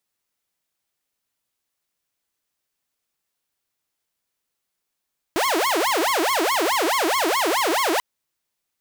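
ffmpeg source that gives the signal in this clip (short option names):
-f lavfi -i "aevalsrc='0.158*(2*mod((707*t-393/(2*PI*4.7)*sin(2*PI*4.7*t)),1)-1)':d=2.64:s=44100"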